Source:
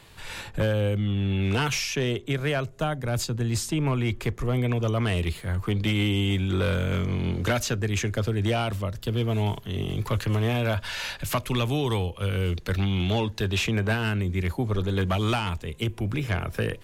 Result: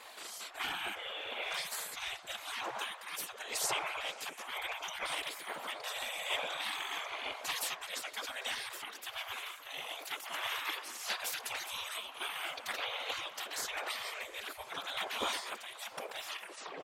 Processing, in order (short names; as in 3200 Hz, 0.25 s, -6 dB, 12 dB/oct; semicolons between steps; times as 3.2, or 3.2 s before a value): tape stop at the end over 0.42 s; wind noise 210 Hz -31 dBFS; comb 3.8 ms, depth 65%; whisperiser; spectral gate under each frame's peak -20 dB weak; low shelf 85 Hz -12 dB; on a send: delay with a stepping band-pass 0.114 s, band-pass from 820 Hz, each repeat 0.7 oct, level -8 dB